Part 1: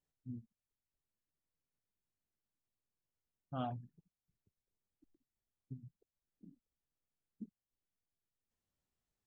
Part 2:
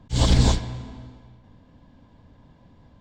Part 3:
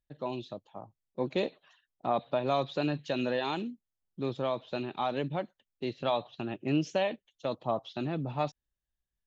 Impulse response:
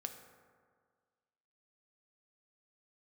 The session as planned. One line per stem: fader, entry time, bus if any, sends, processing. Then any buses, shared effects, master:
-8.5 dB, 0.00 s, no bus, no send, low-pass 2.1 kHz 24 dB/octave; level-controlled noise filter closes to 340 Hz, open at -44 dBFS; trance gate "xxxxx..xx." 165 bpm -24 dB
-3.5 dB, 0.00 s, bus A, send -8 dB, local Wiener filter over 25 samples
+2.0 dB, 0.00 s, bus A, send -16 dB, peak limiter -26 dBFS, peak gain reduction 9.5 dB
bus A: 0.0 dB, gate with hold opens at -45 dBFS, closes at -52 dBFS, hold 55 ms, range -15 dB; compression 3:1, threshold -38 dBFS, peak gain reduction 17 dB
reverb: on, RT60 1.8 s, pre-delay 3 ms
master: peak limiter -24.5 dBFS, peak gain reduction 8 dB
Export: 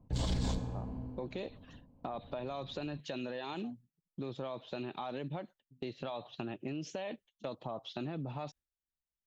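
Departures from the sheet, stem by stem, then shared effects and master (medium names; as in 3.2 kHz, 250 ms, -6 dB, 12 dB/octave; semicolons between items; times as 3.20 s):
stem 1 -8.5 dB -> -15.0 dB; stem 3: send off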